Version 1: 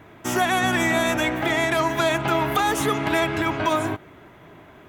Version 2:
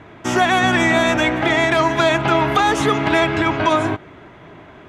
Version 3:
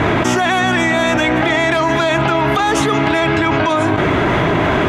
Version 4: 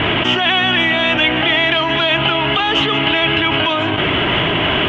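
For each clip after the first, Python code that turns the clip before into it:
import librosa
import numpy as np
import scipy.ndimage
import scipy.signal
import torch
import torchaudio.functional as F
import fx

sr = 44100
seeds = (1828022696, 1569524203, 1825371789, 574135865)

y1 = scipy.signal.sosfilt(scipy.signal.butter(2, 6000.0, 'lowpass', fs=sr, output='sos'), x)
y1 = y1 * librosa.db_to_amplitude(5.5)
y2 = fx.env_flatten(y1, sr, amount_pct=100)
y2 = y2 * librosa.db_to_amplitude(-2.0)
y3 = fx.lowpass_res(y2, sr, hz=3000.0, q=11.0)
y3 = y3 * librosa.db_to_amplitude(-4.0)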